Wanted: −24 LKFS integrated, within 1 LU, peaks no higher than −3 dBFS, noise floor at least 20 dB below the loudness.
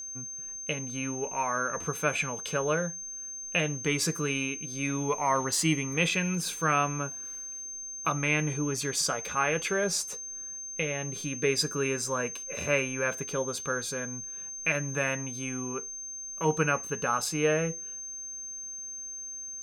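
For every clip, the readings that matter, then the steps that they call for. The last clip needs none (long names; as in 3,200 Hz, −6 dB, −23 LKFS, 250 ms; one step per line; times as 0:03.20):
interfering tone 6,300 Hz; level of the tone −37 dBFS; integrated loudness −30.0 LKFS; sample peak −12.0 dBFS; target loudness −24.0 LKFS
→ notch filter 6,300 Hz, Q 30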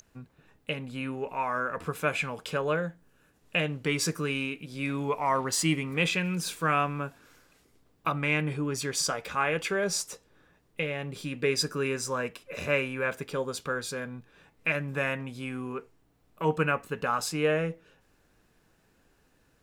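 interfering tone none found; integrated loudness −30.0 LKFS; sample peak −12.0 dBFS; target loudness −24.0 LKFS
→ level +6 dB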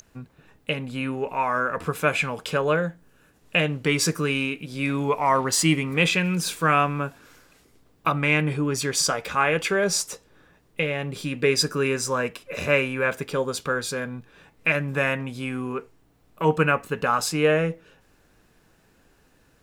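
integrated loudness −24.0 LKFS; sample peak −6.0 dBFS; background noise floor −61 dBFS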